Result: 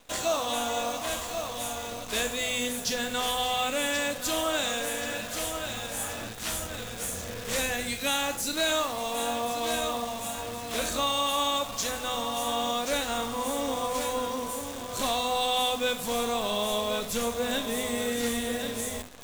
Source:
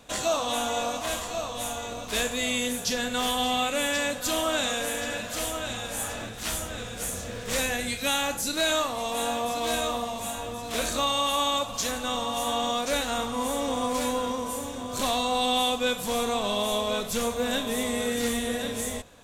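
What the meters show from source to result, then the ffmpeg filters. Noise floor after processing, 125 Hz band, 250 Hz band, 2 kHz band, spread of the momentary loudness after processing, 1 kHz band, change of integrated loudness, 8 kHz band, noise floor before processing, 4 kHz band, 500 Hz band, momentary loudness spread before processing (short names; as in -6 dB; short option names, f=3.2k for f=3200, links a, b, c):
-38 dBFS, -2.0 dB, -3.0 dB, -1.5 dB, 7 LU, -1.5 dB, -1.5 dB, -1.0 dB, -37 dBFS, -1.5 dB, -1.5 dB, 7 LU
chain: -af "bandreject=f=50:t=h:w=6,bandreject=f=100:t=h:w=6,bandreject=f=150:t=h:w=6,bandreject=f=200:t=h:w=6,bandreject=f=250:t=h:w=6,areverse,acompressor=mode=upward:threshold=-35dB:ratio=2.5,areverse,acrusher=bits=7:dc=4:mix=0:aa=0.000001,volume=-1.5dB"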